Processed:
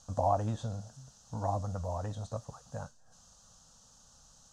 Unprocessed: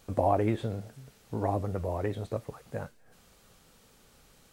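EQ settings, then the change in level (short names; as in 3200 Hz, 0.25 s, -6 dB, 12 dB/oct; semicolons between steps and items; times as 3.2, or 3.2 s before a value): synth low-pass 6400 Hz, resonance Q 4.4; fixed phaser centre 910 Hz, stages 4; -1.0 dB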